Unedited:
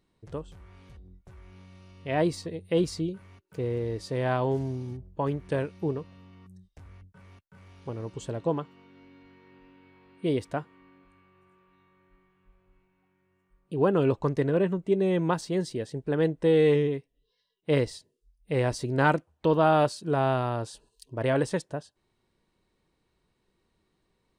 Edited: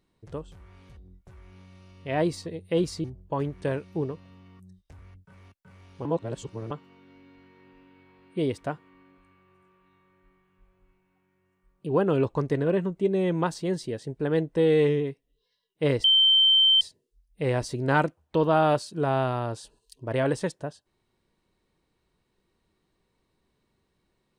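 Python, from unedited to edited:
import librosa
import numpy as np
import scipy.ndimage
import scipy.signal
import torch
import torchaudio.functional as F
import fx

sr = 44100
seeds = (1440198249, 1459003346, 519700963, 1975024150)

y = fx.edit(x, sr, fx.cut(start_s=3.04, length_s=1.87),
    fx.reverse_span(start_s=7.92, length_s=0.66),
    fx.insert_tone(at_s=17.91, length_s=0.77, hz=3110.0, db=-15.5), tone=tone)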